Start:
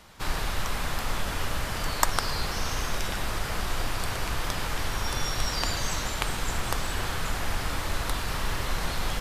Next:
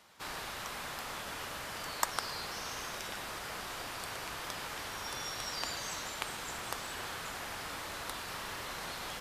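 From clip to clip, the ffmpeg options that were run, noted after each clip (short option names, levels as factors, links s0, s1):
-af "highpass=f=350:p=1,volume=0.422"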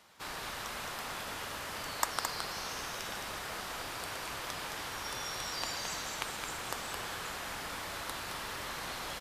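-af "aecho=1:1:217:0.531"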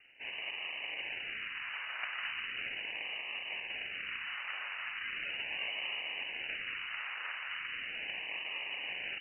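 -af "acrusher=samples=22:mix=1:aa=0.000001:lfo=1:lforange=13.2:lforate=0.38,aeval=exprs='(mod(25.1*val(0)+1,2)-1)/25.1':c=same,lowpass=f=2600:t=q:w=0.5098,lowpass=f=2600:t=q:w=0.6013,lowpass=f=2600:t=q:w=0.9,lowpass=f=2600:t=q:w=2.563,afreqshift=-3000"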